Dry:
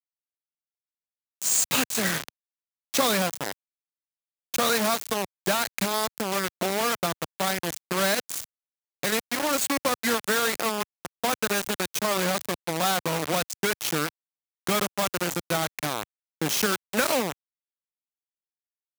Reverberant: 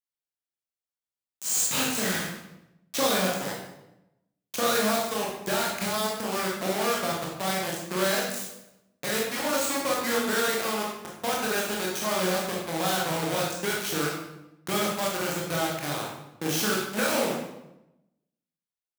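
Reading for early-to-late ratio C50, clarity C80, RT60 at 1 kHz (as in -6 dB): 1.5 dB, 5.0 dB, 0.85 s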